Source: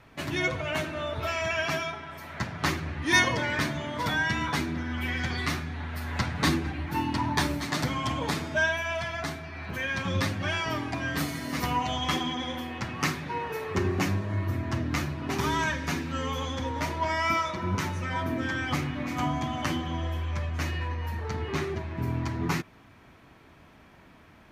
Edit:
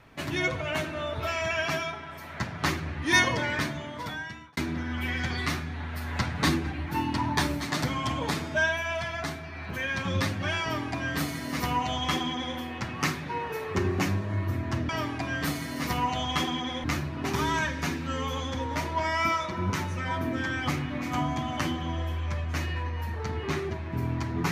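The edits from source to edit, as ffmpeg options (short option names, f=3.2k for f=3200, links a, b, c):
-filter_complex "[0:a]asplit=4[a][b][c][d];[a]atrim=end=4.57,asetpts=PTS-STARTPTS,afade=t=out:st=3.47:d=1.1[e];[b]atrim=start=4.57:end=14.892,asetpts=PTS-STARTPTS,afade=t=in:d=0.004:c=hsin[f];[c]atrim=start=10.618:end=12.572[g];[d]atrim=start=14.888[h];[e][f]concat=n=2:v=0:a=1[i];[i][g]acrossfade=d=0.004:c1=hsin:c2=hsin[j];[j][h]acrossfade=d=0.004:c1=hsin:c2=hsin"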